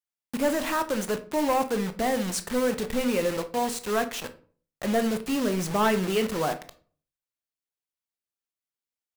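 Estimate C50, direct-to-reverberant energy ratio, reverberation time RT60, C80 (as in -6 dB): 14.0 dB, 9.0 dB, 0.45 s, 19.5 dB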